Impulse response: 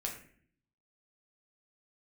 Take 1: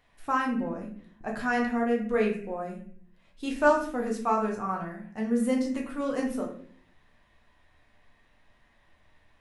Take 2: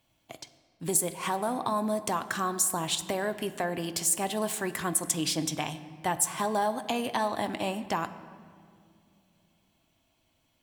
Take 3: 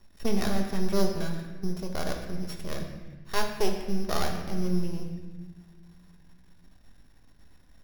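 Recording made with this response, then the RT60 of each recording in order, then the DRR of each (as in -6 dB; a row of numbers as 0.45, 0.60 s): 1; 0.55 s, not exponential, 1.3 s; -1.0, 10.0, 2.0 dB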